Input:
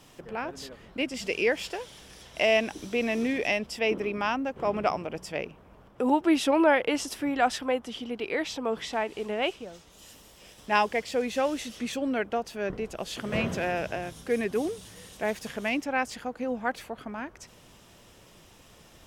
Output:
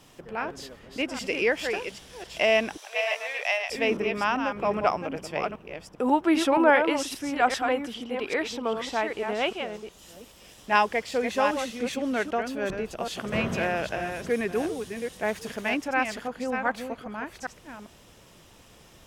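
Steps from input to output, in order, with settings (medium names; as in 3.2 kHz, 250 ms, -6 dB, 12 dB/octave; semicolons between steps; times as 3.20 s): chunks repeated in reverse 397 ms, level -6.5 dB; 2.77–3.70 s: steep high-pass 580 Hz 36 dB/octave; dynamic bell 1.3 kHz, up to +4 dB, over -39 dBFS, Q 1.1; 6.57–7.50 s: three bands expanded up and down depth 40%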